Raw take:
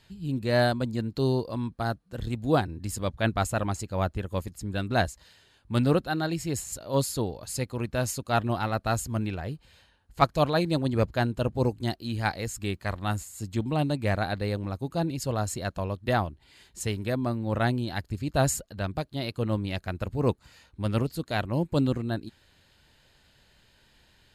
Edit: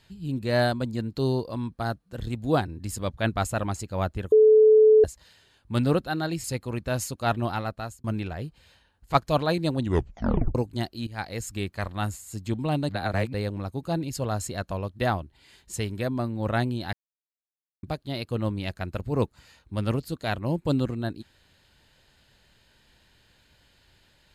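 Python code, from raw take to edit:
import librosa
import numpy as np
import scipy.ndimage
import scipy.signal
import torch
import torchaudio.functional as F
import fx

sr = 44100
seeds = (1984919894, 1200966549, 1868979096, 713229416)

y = fx.edit(x, sr, fx.bleep(start_s=4.32, length_s=0.72, hz=433.0, db=-12.0),
    fx.cut(start_s=6.44, length_s=1.07),
    fx.fade_out_span(start_s=8.6, length_s=0.51),
    fx.tape_stop(start_s=10.85, length_s=0.77),
    fx.fade_in_from(start_s=12.14, length_s=0.31, floor_db=-15.5),
    fx.reverse_span(start_s=13.96, length_s=0.44),
    fx.silence(start_s=18.0, length_s=0.9), tone=tone)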